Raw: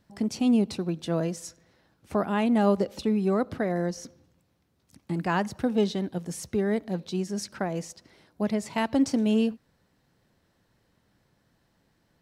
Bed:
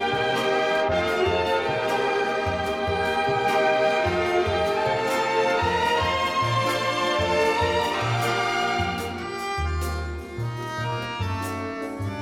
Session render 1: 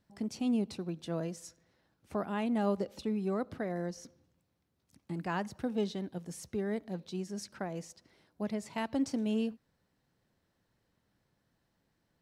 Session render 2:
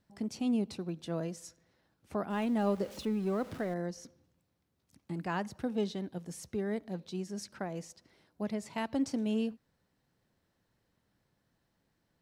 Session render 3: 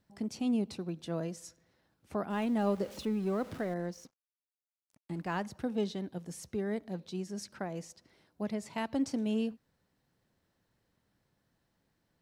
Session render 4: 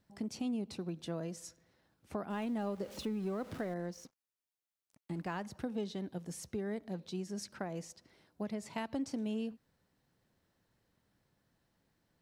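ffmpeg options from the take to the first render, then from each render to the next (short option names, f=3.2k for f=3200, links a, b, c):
-af "volume=-8.5dB"
-filter_complex "[0:a]asettb=1/sr,asplit=3[a][b][c];[a]atrim=end=2.304[d];[b]atrim=start=2.3:end=3.74,asetpts=PTS-STARTPTS,afade=t=in:d=0.004:c=qsin,afade=t=out:st=1.436:d=0.004:c=qsin,aeval=exprs='val(0)+0.5*0.00501*sgn(val(0))':c=same[e];[c]atrim=start=3.736[f];[d][e]acrossfade=d=0.004:c1=hsin:c2=qsin[g];[g][f]acrossfade=d=0.004:c1=qsin:c2=hsin"
-filter_complex "[0:a]asettb=1/sr,asplit=3[a][b][c];[a]atrim=end=3.794[d];[b]atrim=start=3.79:end=5.47,asetpts=PTS-STARTPTS,afade=t=in:d=0.004:c=qsin,afade=t=out:st=1.676:d=0.004:c=qsin,aeval=exprs='sgn(val(0))*max(abs(val(0))-0.00112,0)':c=same[e];[c]atrim=start=5.466[f];[d][e]acrossfade=d=0.004:c1=hsin:c2=qsin[g];[g][f]acrossfade=d=0.004:c1=qsin:c2=hsin"
-af "acompressor=threshold=-35dB:ratio=3"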